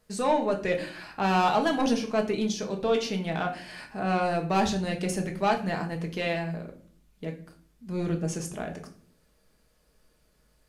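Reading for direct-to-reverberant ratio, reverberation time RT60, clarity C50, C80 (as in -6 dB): 2.5 dB, 0.50 s, 11.5 dB, 16.0 dB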